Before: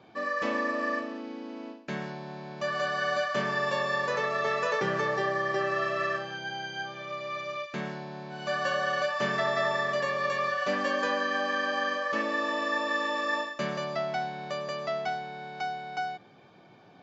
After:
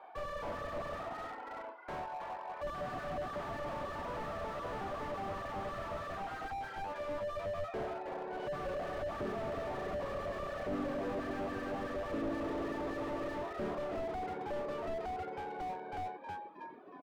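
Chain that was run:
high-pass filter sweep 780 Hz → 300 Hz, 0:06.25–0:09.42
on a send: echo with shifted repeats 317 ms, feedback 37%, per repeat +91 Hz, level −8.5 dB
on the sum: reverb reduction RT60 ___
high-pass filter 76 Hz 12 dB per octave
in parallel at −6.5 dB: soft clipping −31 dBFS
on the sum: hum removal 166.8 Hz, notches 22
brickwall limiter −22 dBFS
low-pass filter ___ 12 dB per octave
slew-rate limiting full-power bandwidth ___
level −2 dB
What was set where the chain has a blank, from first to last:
1.1 s, 1,800 Hz, 12 Hz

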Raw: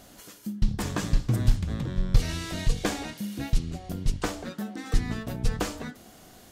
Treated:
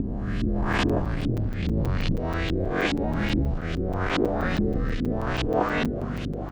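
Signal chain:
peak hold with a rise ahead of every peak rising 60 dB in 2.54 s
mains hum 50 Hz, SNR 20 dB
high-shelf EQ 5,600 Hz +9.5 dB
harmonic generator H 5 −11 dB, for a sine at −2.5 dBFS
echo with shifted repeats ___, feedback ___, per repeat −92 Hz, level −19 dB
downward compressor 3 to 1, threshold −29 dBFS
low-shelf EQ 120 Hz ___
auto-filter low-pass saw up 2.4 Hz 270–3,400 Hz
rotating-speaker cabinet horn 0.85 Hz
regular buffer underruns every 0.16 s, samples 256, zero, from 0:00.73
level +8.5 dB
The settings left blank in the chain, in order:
404 ms, 54%, −10 dB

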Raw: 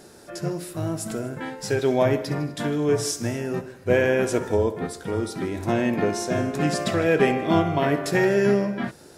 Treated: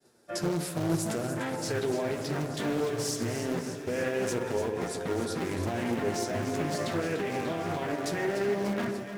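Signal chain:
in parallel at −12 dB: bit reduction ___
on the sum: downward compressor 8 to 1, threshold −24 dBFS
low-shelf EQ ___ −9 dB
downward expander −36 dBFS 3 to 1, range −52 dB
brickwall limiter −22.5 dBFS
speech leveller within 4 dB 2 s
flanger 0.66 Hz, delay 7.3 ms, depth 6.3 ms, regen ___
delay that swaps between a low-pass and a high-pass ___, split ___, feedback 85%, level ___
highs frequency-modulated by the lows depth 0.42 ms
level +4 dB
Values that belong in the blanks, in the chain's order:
4 bits, 75 Hz, +37%, 147 ms, 1,300 Hz, −8.5 dB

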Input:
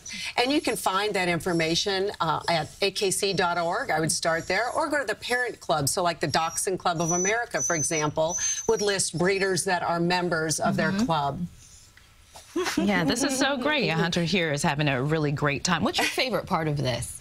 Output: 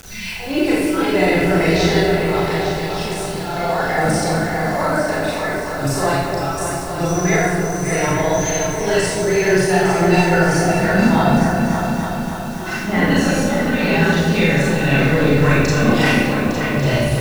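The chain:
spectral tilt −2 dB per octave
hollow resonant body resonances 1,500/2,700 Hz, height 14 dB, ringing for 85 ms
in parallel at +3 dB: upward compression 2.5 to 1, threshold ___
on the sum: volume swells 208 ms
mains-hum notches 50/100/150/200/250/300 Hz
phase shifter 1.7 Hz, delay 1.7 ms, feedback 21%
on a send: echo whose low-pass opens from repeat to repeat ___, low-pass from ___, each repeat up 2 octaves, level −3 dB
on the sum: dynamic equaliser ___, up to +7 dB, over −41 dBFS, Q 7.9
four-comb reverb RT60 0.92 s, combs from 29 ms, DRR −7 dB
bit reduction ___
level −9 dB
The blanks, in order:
−35 dBFS, 286 ms, 750 Hz, 2,000 Hz, 5 bits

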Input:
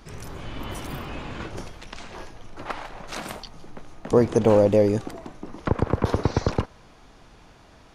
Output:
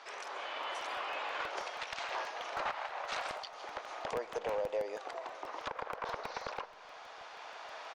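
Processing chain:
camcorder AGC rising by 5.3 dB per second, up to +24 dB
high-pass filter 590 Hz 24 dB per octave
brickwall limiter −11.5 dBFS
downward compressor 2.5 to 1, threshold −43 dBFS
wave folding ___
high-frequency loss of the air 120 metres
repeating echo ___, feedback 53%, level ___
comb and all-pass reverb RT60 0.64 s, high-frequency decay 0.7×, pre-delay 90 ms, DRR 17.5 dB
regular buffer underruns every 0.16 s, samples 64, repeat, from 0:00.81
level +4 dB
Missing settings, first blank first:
−31 dBFS, 595 ms, −23.5 dB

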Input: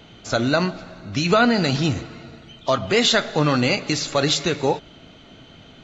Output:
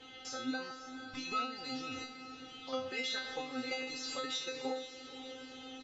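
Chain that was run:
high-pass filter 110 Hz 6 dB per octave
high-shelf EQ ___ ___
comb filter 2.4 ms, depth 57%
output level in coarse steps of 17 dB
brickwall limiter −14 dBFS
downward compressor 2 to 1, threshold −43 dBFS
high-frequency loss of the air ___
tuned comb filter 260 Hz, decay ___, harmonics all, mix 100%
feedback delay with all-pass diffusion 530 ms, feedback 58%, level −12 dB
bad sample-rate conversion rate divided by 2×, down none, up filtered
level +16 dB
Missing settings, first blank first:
2,800 Hz, +5 dB, 68 metres, 0.42 s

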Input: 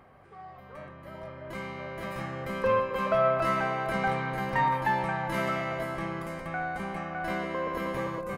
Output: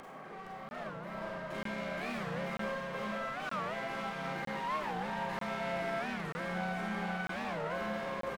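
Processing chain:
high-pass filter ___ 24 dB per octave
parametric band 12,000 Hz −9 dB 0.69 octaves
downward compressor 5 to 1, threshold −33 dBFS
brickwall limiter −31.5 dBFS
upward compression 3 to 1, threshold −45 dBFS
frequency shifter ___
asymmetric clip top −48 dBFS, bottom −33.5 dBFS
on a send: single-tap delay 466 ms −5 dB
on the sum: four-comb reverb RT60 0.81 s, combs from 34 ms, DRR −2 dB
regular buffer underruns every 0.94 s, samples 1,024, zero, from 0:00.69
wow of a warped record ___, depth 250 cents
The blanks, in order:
150 Hz, +16 Hz, 45 rpm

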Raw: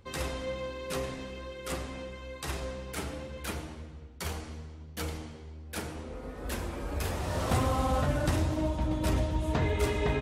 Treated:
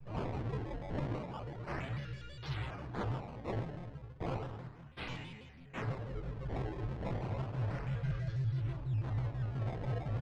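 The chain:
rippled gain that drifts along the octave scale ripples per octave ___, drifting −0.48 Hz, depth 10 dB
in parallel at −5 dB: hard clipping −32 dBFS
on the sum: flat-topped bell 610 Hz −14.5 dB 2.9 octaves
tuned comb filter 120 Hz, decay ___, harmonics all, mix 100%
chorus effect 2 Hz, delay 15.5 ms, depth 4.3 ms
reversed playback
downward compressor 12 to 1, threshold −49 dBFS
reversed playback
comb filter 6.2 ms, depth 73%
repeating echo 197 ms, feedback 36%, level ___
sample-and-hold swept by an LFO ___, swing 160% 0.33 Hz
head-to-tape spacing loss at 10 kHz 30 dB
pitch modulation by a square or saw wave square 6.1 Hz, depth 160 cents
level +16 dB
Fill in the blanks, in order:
0.58, 0.35 s, −16 dB, 19×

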